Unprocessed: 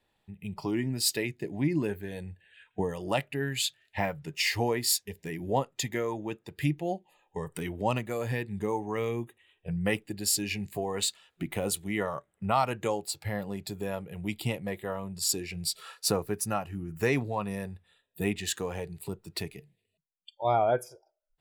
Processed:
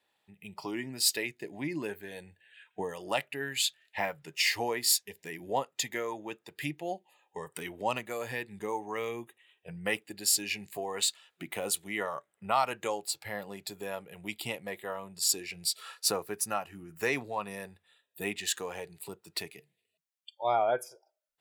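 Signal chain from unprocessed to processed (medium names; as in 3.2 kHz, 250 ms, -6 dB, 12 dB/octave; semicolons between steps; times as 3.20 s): high-pass 690 Hz 6 dB/octave; trim +1 dB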